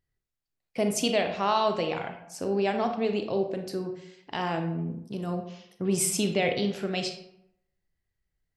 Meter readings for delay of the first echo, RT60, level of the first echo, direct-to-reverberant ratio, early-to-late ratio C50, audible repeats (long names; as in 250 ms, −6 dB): no echo audible, 0.75 s, no echo audible, 6.0 dB, 8.0 dB, no echo audible